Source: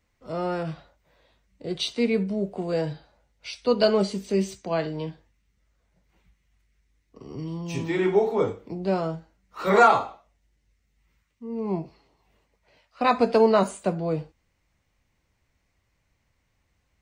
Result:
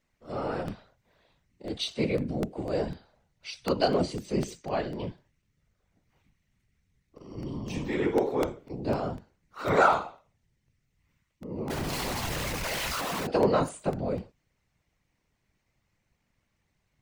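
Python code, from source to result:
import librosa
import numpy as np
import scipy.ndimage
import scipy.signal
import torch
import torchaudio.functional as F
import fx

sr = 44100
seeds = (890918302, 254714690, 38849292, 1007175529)

p1 = fx.clip_1bit(x, sr, at=(11.7, 13.27))
p2 = fx.whisperise(p1, sr, seeds[0])
p3 = 10.0 ** (-20.0 / 20.0) * np.tanh(p2 / 10.0 ** (-20.0 / 20.0))
p4 = p2 + (p3 * librosa.db_to_amplitude(-7.5))
p5 = fx.buffer_crackle(p4, sr, first_s=0.68, period_s=0.25, block=64, kind='repeat')
y = p5 * librosa.db_to_amplitude(-6.5)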